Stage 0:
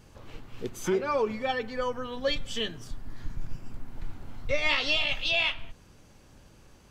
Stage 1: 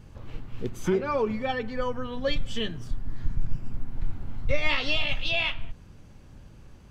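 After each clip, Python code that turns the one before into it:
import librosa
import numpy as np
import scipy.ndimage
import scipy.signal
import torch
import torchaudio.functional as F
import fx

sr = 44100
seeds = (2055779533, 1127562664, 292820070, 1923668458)

y = fx.bass_treble(x, sr, bass_db=8, treble_db=-5)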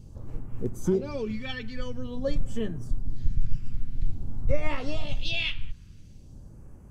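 y = fx.phaser_stages(x, sr, stages=2, low_hz=640.0, high_hz=3300.0, hz=0.48, feedback_pct=40)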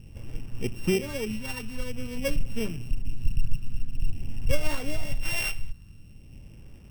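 y = np.r_[np.sort(x[:len(x) // 16 * 16].reshape(-1, 16), axis=1).ravel(), x[len(x) // 16 * 16:]]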